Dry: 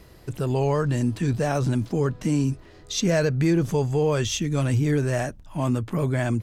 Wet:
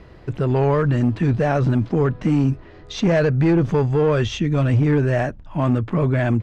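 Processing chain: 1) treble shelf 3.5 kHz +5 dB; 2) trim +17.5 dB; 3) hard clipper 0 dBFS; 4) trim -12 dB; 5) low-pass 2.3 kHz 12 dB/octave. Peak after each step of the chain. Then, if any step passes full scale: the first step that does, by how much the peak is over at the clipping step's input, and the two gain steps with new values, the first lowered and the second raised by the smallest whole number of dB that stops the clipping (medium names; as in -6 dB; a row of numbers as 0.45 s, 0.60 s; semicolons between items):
-10.0 dBFS, +7.5 dBFS, 0.0 dBFS, -12.0 dBFS, -11.5 dBFS; step 2, 7.5 dB; step 2 +9.5 dB, step 4 -4 dB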